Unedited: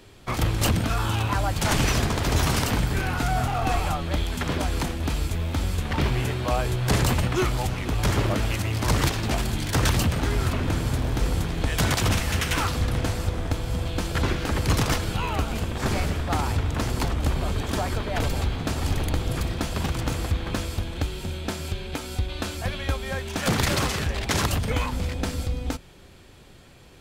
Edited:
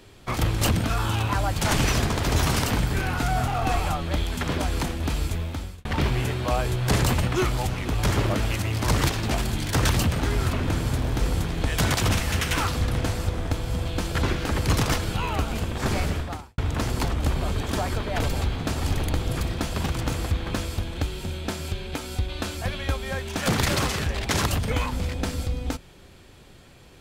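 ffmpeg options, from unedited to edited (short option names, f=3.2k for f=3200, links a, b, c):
-filter_complex "[0:a]asplit=3[a][b][c];[a]atrim=end=5.85,asetpts=PTS-STARTPTS,afade=t=out:st=5.32:d=0.53[d];[b]atrim=start=5.85:end=16.58,asetpts=PTS-STARTPTS,afade=t=in:d=0.004:c=hsin,afade=t=out:st=10.33:d=0.4:c=qua[e];[c]atrim=start=16.58,asetpts=PTS-STARTPTS,afade=t=in:d=0.004:c=hsin[f];[d][e][f]concat=n=3:v=0:a=1"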